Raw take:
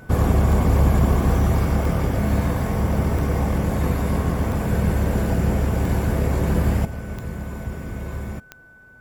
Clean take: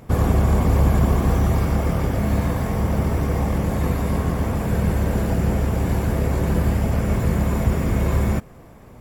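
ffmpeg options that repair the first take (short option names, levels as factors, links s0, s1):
-af "adeclick=t=4,bandreject=f=1500:w=30,asetnsamples=n=441:p=0,asendcmd='6.85 volume volume 10.5dB',volume=1"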